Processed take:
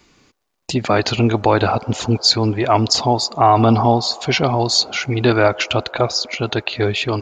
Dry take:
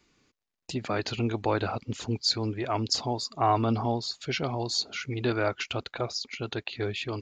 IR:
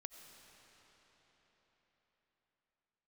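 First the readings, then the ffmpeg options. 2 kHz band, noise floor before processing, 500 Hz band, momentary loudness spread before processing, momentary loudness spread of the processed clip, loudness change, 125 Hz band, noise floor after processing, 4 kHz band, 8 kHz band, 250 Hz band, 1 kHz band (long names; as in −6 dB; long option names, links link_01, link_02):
+12.5 dB, −83 dBFS, +13.0 dB, 8 LU, 7 LU, +13.0 dB, +12.5 dB, −58 dBFS, +12.5 dB, +12.5 dB, +12.5 dB, +13.5 dB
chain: -filter_complex "[0:a]asplit=2[link_01][link_02];[link_02]asuperpass=centerf=780:order=4:qfactor=1[link_03];[1:a]atrim=start_sample=2205,asetrate=52920,aresample=44100[link_04];[link_03][link_04]afir=irnorm=-1:irlink=0,volume=-2.5dB[link_05];[link_01][link_05]amix=inputs=2:normalize=0,alimiter=level_in=14dB:limit=-1dB:release=50:level=0:latency=1,volume=-1dB"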